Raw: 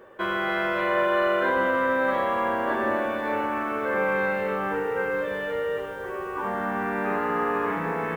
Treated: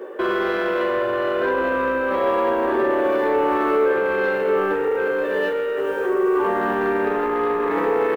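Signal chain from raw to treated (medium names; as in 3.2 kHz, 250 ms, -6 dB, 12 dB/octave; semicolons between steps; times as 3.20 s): high-pass 240 Hz 24 dB/octave; peaking EQ 400 Hz +12 dB 1 oct; peak limiter -18 dBFS, peak gain reduction 10.5 dB; saturation -20 dBFS, distortion -20 dB; doubling 16 ms -5.5 dB; trim +6.5 dB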